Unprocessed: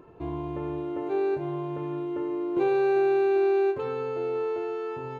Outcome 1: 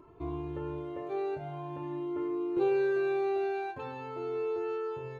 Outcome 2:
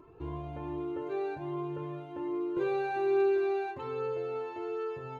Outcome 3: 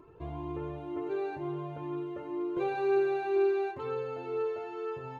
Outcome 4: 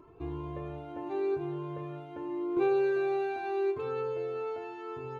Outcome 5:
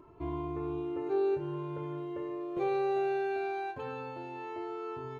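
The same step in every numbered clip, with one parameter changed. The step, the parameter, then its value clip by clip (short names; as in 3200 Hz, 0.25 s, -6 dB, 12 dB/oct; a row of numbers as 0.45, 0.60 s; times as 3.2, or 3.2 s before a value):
cascading flanger, rate: 0.48, 1.3, 2.1, 0.82, 0.21 Hz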